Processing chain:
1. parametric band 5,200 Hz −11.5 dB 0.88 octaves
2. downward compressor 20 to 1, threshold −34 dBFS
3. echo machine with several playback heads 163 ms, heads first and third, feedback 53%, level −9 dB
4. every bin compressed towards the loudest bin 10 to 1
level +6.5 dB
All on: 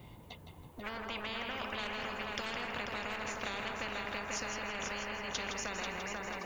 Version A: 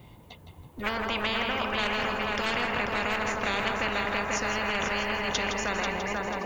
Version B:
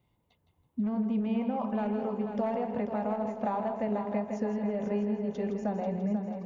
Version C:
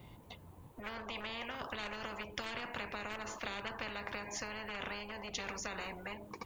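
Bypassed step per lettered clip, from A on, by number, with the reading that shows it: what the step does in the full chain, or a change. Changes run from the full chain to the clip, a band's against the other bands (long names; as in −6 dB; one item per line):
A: 2, average gain reduction 5.0 dB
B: 4, 2 kHz band −23.0 dB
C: 3, change in crest factor +2.5 dB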